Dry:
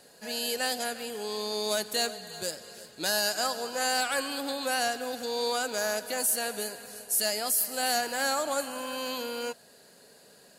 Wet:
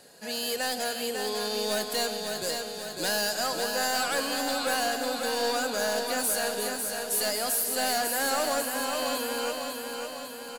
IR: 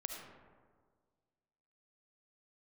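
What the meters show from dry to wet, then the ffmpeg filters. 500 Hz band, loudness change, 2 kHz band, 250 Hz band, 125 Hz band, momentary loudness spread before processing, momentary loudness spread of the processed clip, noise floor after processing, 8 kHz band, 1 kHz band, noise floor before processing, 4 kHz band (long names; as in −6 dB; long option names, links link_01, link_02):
+2.5 dB, +1.5 dB, +1.5 dB, +3.5 dB, can't be measured, 9 LU, 6 LU, −40 dBFS, +1.0 dB, +2.0 dB, −56 dBFS, +1.5 dB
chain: -filter_complex "[0:a]volume=26.5dB,asoftclip=hard,volume=-26.5dB,aecho=1:1:550|1100|1650|2200|2750|3300|3850|4400:0.562|0.332|0.196|0.115|0.0681|0.0402|0.0237|0.014,asplit=2[link_01][link_02];[1:a]atrim=start_sample=2205,afade=type=out:start_time=0.19:duration=0.01,atrim=end_sample=8820[link_03];[link_02][link_03]afir=irnorm=-1:irlink=0,volume=-9dB[link_04];[link_01][link_04]amix=inputs=2:normalize=0"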